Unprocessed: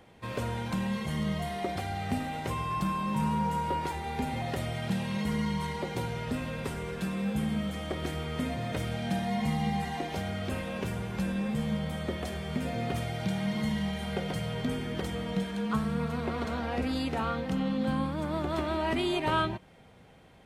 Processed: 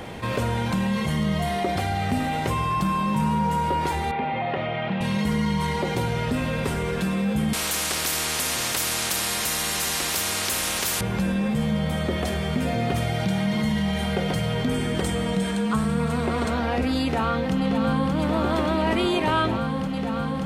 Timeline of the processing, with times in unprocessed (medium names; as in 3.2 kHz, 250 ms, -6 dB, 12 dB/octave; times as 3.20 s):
4.11–5.01 s: cabinet simulation 220–2800 Hz, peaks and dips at 260 Hz -9 dB, 420 Hz -4 dB, 1.6 kHz -5 dB
7.53–11.01 s: spectrum-flattening compressor 10:1
14.74–16.50 s: peaking EQ 8.4 kHz +9.5 dB 0.45 oct
17.03–18.13 s: echo throw 580 ms, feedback 85%, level -5.5 dB
whole clip: level flattener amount 50%; trim +4.5 dB